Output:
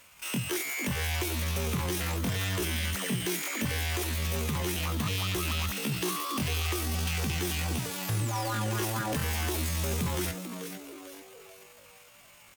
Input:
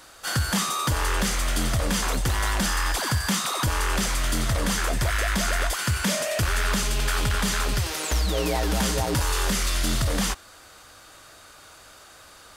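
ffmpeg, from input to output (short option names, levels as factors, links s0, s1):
-filter_complex "[0:a]asplit=6[s0][s1][s2][s3][s4][s5];[s1]adelay=441,afreqshift=55,volume=0.355[s6];[s2]adelay=882,afreqshift=110,volume=0.164[s7];[s3]adelay=1323,afreqshift=165,volume=0.075[s8];[s4]adelay=1764,afreqshift=220,volume=0.0347[s9];[s5]adelay=2205,afreqshift=275,volume=0.0158[s10];[s0][s6][s7][s8][s9][s10]amix=inputs=6:normalize=0,asetrate=80880,aresample=44100,atempo=0.545254,volume=0.447"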